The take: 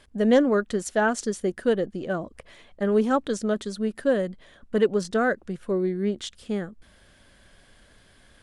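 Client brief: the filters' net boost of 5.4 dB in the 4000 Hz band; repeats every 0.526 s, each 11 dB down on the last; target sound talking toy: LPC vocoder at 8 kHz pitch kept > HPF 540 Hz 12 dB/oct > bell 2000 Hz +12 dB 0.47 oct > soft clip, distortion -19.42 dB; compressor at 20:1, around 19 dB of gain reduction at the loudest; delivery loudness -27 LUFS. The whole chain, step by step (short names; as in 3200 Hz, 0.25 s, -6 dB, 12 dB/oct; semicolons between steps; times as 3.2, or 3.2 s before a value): bell 4000 Hz +5.5 dB; compressor 20:1, threshold -33 dBFS; feedback echo 0.526 s, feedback 28%, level -11 dB; LPC vocoder at 8 kHz pitch kept; HPF 540 Hz 12 dB/oct; bell 2000 Hz +12 dB 0.47 oct; soft clip -30.5 dBFS; gain +17.5 dB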